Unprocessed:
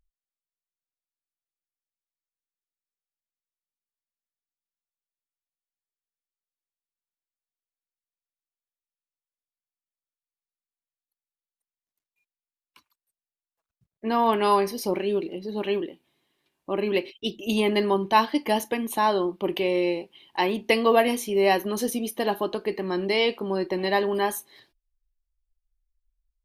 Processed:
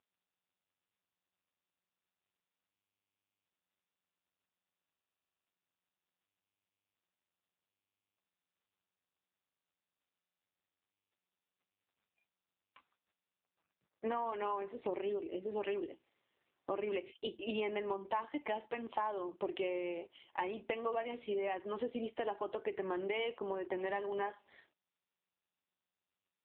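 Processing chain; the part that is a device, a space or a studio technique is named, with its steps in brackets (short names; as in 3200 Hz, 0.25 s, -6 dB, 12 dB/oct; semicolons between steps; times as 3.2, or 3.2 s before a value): voicemail (BPF 390–2700 Hz; compressor 8:1, threshold -33 dBFS, peak gain reduction 18.5 dB; AMR-NB 5.9 kbps 8000 Hz)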